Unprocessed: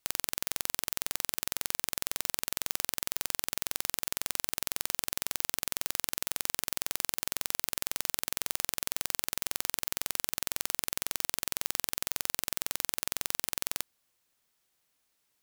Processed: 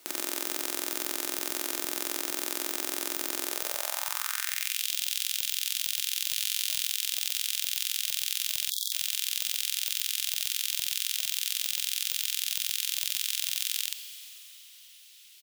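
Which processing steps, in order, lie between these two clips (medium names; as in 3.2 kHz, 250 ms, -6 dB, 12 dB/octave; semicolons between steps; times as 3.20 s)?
6.30–6.81 s: doubling 19 ms -5.5 dB; multi-tap echo 49/120 ms -8/-15.5 dB; two-slope reverb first 0.34 s, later 3.6 s, from -19 dB, DRR 17.5 dB; high-pass sweep 330 Hz -> 3.1 kHz, 3.44–4.85 s; 8.70–8.92 s: spectral selection erased 520–3300 Hz; loudness maximiser +24 dB; trim -4.5 dB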